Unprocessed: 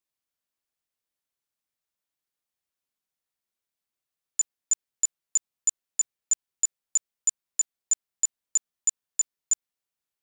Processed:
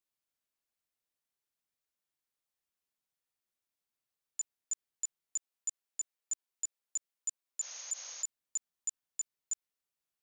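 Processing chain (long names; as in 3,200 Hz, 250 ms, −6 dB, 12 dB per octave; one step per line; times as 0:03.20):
0:05.36–0:07.60: high-pass filter 310 Hz
0:07.64–0:08.20: healed spectral selection 470–6,700 Hz
brickwall limiter −25 dBFS, peak gain reduction 10 dB
level −3 dB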